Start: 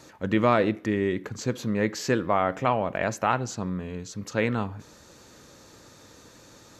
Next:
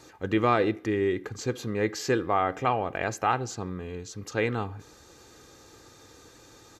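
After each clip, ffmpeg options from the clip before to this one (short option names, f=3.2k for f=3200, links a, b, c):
-af "aecho=1:1:2.5:0.47,volume=-2dB"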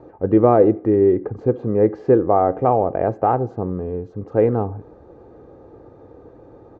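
-af "lowpass=f=630:t=q:w=1.5,volume=9dB"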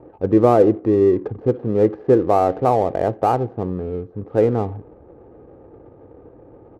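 -af "adynamicsmooth=sensitivity=7:basefreq=1.1k"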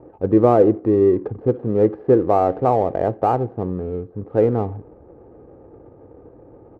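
-af "highshelf=f=3.3k:g=-12"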